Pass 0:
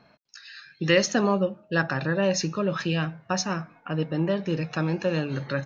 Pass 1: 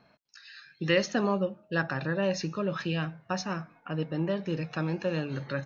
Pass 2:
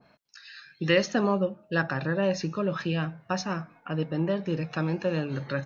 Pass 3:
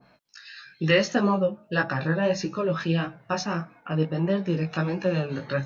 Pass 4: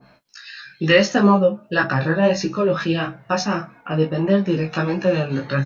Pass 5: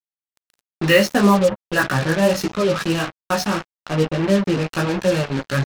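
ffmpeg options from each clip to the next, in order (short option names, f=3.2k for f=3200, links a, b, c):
-filter_complex "[0:a]acrossover=split=5800[a][b];[b]acompressor=threshold=-57dB:ratio=4:attack=1:release=60[c];[a][c]amix=inputs=2:normalize=0,volume=-4.5dB"
-af "adynamicequalizer=threshold=0.00708:dfrequency=1700:dqfactor=0.7:tfrequency=1700:tqfactor=0.7:attack=5:release=100:ratio=0.375:range=2:mode=cutabove:tftype=highshelf,volume=2.5dB"
-af "flanger=delay=15.5:depth=3.7:speed=1.6,volume=5.5dB"
-af "aecho=1:1:15|44:0.562|0.15,volume=5dB"
-af "acrusher=bits=3:mix=0:aa=0.5"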